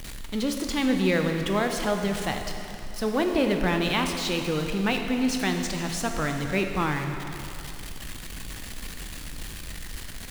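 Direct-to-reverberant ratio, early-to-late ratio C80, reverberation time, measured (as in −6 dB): 4.0 dB, 6.0 dB, 2.8 s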